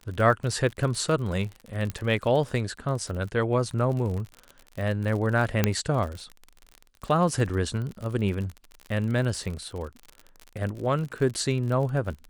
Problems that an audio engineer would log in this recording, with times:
crackle 52 per s -32 dBFS
1.90 s: pop -17 dBFS
5.64 s: pop -6 dBFS
7.49–7.50 s: dropout 5.7 ms

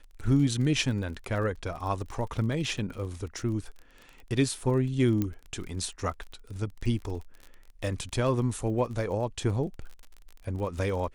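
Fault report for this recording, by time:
crackle 36 per s -37 dBFS
5.22 s: pop -16 dBFS

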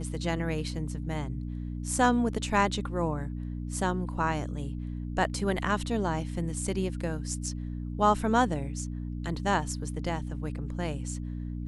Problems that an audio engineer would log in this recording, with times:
hum 60 Hz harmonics 5 -35 dBFS

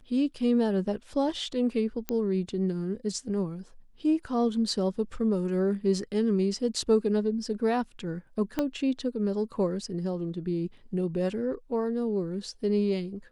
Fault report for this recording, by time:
2.09 s: pop -14 dBFS
8.59 s: pop -14 dBFS

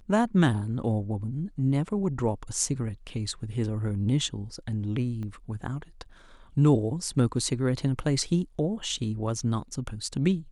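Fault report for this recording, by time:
5.23 s: pop -28 dBFS

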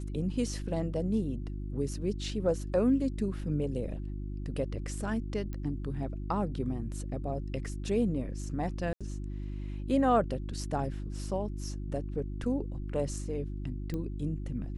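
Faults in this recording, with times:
hum 50 Hz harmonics 7 -37 dBFS
5.53 s: pop -27 dBFS
8.93–9.01 s: dropout 76 ms
13.94 s: pop -24 dBFS

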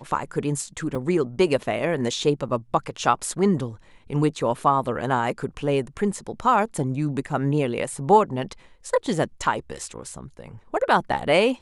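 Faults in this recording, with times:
0.95 s: dropout 3.4 ms

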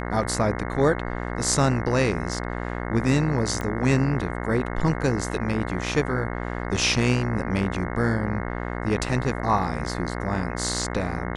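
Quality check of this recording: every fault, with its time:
buzz 60 Hz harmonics 36 -30 dBFS
3.61 s: pop -16 dBFS

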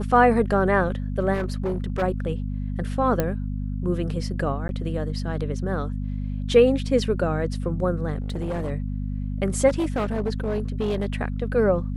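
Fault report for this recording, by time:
hum 50 Hz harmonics 5 -28 dBFS
1.33–2.03 s: clipped -21 dBFS
3.20 s: pop -9 dBFS
4.68–4.69 s: dropout 11 ms
8.20–8.71 s: clipped -23.5 dBFS
9.68–11.16 s: clipped -20 dBFS

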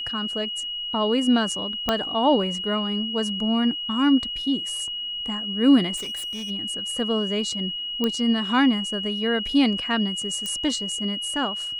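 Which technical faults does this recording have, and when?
whine 2.9 kHz -28 dBFS
1.89 s: pop -7 dBFS
5.96–6.51 s: clipped -29 dBFS
8.04 s: pop -11 dBFS
10.46 s: pop -15 dBFS

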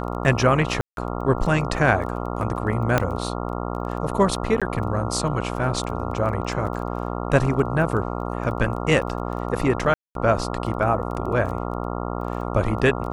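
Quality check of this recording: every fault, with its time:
buzz 60 Hz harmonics 23 -28 dBFS
crackle 13 per s -31 dBFS
0.81–0.97 s: dropout 162 ms
2.98 s: pop -5 dBFS
4.60–4.62 s: dropout 16 ms
9.94–10.15 s: dropout 212 ms

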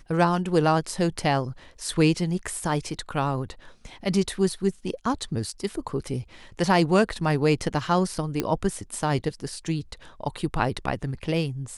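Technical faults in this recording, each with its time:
8.40 s: pop -10 dBFS

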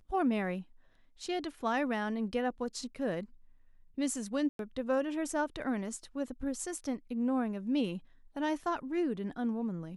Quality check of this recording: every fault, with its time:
4.49–4.59 s: dropout 102 ms

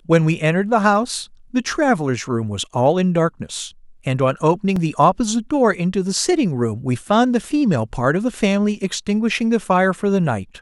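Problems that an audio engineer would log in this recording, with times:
4.76 s: dropout 4 ms

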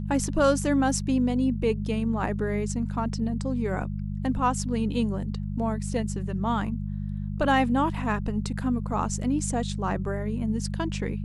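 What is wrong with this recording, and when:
hum 50 Hz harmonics 4 -31 dBFS

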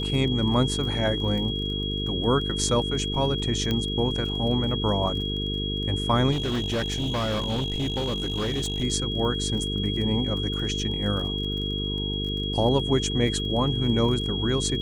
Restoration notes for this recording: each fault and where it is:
buzz 50 Hz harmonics 9 -30 dBFS
crackle 24 per s -33 dBFS
whine 3.3 kHz -30 dBFS
3.71 s: pop -13 dBFS
6.31–8.84 s: clipped -23 dBFS

